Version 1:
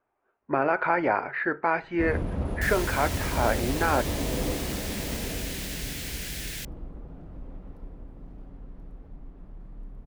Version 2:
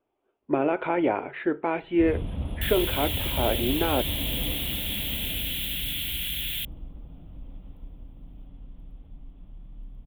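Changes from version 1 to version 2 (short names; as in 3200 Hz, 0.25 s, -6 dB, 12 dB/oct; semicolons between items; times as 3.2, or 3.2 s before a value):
first sound: add bell 390 Hz -14.5 dB 1.2 oct; second sound +4.0 dB; master: add EQ curve 190 Hz 0 dB, 310 Hz +6 dB, 1700 Hz -10 dB, 3400 Hz +10 dB, 5200 Hz -28 dB, 12000 Hz +5 dB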